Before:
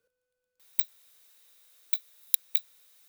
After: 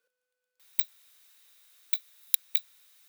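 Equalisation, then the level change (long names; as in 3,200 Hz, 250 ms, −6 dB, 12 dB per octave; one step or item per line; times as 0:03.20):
high-pass filter 230 Hz
tilt shelving filter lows −8 dB, about 870 Hz
high-shelf EQ 2,900 Hz −8.5 dB
0.0 dB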